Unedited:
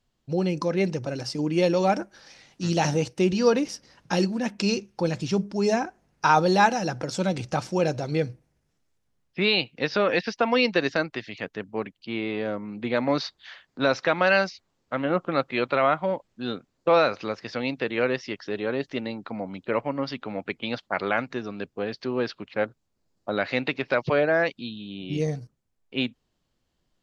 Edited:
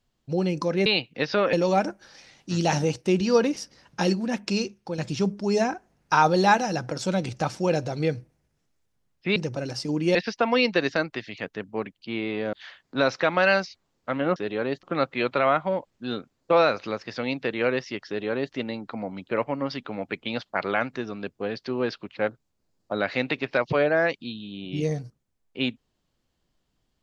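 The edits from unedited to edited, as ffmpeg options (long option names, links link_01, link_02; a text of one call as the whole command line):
ffmpeg -i in.wav -filter_complex "[0:a]asplit=9[link_01][link_02][link_03][link_04][link_05][link_06][link_07][link_08][link_09];[link_01]atrim=end=0.862[link_10];[link_02]atrim=start=9.478:end=10.152[link_11];[link_03]atrim=start=1.648:end=5.1,asetpts=PTS-STARTPTS,afade=type=out:start_time=2.892:duration=0.56:silence=0.398107[link_12];[link_04]atrim=start=5.1:end=9.482,asetpts=PTS-STARTPTS,afade=type=in:duration=0.004:curve=hsin:silence=0.398107[link_13];[link_05]atrim=start=0.858:end=1.652[link_14];[link_06]atrim=start=10.148:end=12.532[link_15];[link_07]atrim=start=13.368:end=15.202[link_16];[link_08]atrim=start=18.438:end=18.912[link_17];[link_09]atrim=start=15.198[link_18];[link_10][link_11]acrossfade=duration=0.004:curve1=hsin:curve2=hsin[link_19];[link_12][link_13]concat=n=2:v=0:a=1[link_20];[link_19][link_20]acrossfade=duration=0.004:curve1=hsin:curve2=hsin[link_21];[link_21][link_14]acrossfade=duration=0.004:curve1=hsin:curve2=hsin[link_22];[link_22][link_15]acrossfade=duration=0.004:curve1=hsin:curve2=hsin[link_23];[link_23][link_16]acrossfade=duration=0.004:curve1=hsin:curve2=hsin[link_24];[link_24][link_17]acrossfade=duration=0.004:curve1=hsin:curve2=hsin[link_25];[link_25][link_18]acrossfade=duration=0.004:curve1=hsin:curve2=hsin" out.wav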